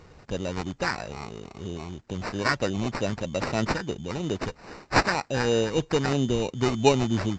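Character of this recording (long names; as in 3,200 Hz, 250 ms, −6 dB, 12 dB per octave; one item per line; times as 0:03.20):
phaser sweep stages 2, 3.1 Hz, lowest notch 750–2,600 Hz
aliases and images of a low sample rate 3,300 Hz, jitter 0%
A-law companding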